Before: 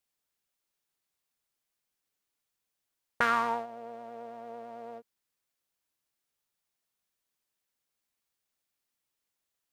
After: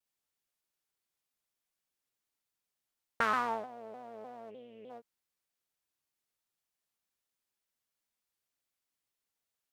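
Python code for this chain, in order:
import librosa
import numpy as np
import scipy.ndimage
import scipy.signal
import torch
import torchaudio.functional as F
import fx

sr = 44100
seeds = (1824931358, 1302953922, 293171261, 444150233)

y = fx.curve_eq(x, sr, hz=(520.0, 760.0, 1500.0, 3000.0, 4300.0), db=(0, -23, -19, 11, -13), at=(4.49, 4.89), fade=0.02)
y = fx.vibrato_shape(y, sr, shape='saw_down', rate_hz=3.3, depth_cents=160.0)
y = F.gain(torch.from_numpy(y), -3.5).numpy()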